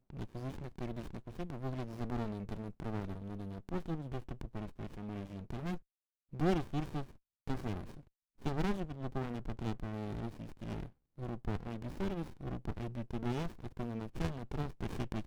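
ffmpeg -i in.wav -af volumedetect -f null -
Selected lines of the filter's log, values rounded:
mean_volume: -39.3 dB
max_volume: -20.6 dB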